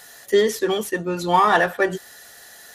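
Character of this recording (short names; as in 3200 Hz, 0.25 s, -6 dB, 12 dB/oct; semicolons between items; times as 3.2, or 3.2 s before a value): noise floor -45 dBFS; spectral tilt -4.0 dB/oct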